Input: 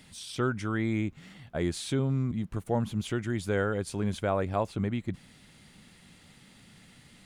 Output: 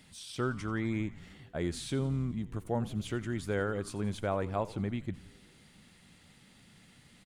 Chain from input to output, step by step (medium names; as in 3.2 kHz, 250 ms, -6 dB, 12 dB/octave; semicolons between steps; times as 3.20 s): frequency-shifting echo 87 ms, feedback 64%, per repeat -100 Hz, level -17.5 dB; trim -4 dB